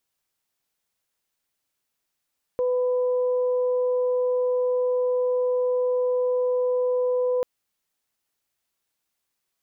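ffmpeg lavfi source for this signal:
-f lavfi -i "aevalsrc='0.1*sin(2*PI*499*t)+0.0133*sin(2*PI*998*t)':d=4.84:s=44100"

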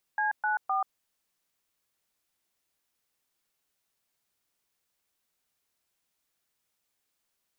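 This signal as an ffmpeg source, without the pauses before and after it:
-f lavfi -i "aevalsrc='0.0422*clip(min(mod(t,0.257),0.134-mod(t,0.257))/0.002,0,1)*(eq(floor(t/0.257),0)*(sin(2*PI*852*mod(t,0.257))+sin(2*PI*1633*mod(t,0.257)))+eq(floor(t/0.257),1)*(sin(2*PI*852*mod(t,0.257))+sin(2*PI*1477*mod(t,0.257)))+eq(floor(t/0.257),2)*(sin(2*PI*770*mod(t,0.257))+sin(2*PI*1209*mod(t,0.257))))':d=0.771:s=44100"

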